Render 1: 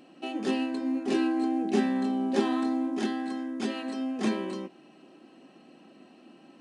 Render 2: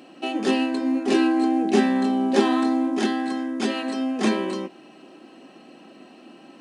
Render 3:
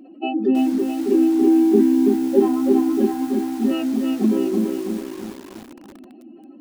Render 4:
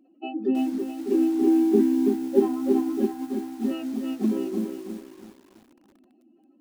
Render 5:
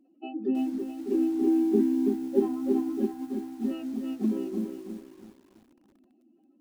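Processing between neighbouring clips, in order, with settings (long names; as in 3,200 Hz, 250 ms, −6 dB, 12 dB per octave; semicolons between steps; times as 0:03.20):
high-pass filter 220 Hz 6 dB per octave; level +8.5 dB
expanding power law on the bin magnitudes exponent 2.4; feedback echo at a low word length 329 ms, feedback 55%, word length 7 bits, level −3.5 dB; level +4 dB
expander for the loud parts 1.5 to 1, over −37 dBFS; level −3 dB
low-shelf EQ 300 Hz +6.5 dB; level −7 dB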